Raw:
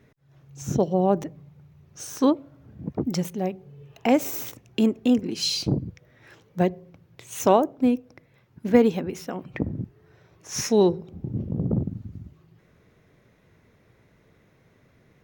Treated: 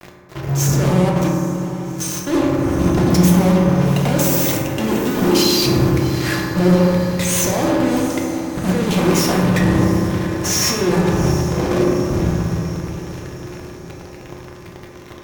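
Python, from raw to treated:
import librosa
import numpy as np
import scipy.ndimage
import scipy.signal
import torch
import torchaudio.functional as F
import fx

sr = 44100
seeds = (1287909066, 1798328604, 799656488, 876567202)

y = fx.highpass(x, sr, hz=fx.line((11.29, 1400.0), (12.1, 370.0)), slope=12, at=(11.29, 12.1), fade=0.02)
y = fx.over_compress(y, sr, threshold_db=-31.0, ratio=-1.0)
y = fx.power_curve(y, sr, exponent=2.0, at=(1.09, 2.27))
y = fx.fuzz(y, sr, gain_db=47.0, gate_db=-46.0)
y = fx.echo_diffused(y, sr, ms=750, feedback_pct=57, wet_db=-13)
y = fx.rev_fdn(y, sr, rt60_s=2.3, lf_ratio=1.3, hf_ratio=0.3, size_ms=17.0, drr_db=-2.5)
y = F.gain(torch.from_numpy(y), -6.0).numpy()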